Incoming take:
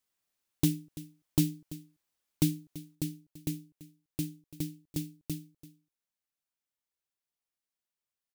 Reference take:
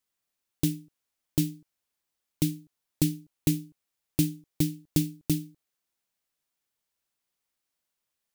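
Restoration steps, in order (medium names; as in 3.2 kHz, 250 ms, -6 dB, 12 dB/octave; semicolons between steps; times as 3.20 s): clip repair -15.5 dBFS; inverse comb 337 ms -17.5 dB; trim 0 dB, from 2.95 s +9.5 dB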